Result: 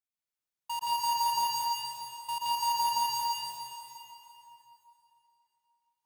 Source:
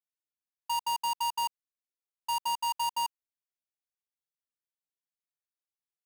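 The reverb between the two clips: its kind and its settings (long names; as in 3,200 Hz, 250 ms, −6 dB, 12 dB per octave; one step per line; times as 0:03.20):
dense smooth reverb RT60 3.1 s, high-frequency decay 0.9×, pre-delay 110 ms, DRR −6.5 dB
level −4.5 dB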